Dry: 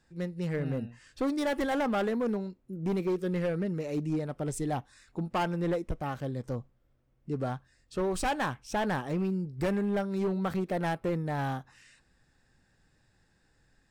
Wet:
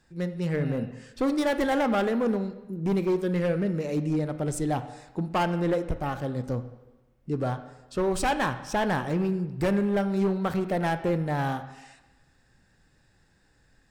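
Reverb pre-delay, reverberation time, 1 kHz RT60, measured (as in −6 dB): 26 ms, 1.1 s, 1.1 s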